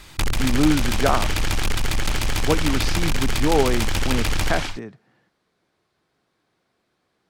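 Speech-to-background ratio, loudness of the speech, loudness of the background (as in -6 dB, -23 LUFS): 0.5 dB, -24.5 LUFS, -25.0 LUFS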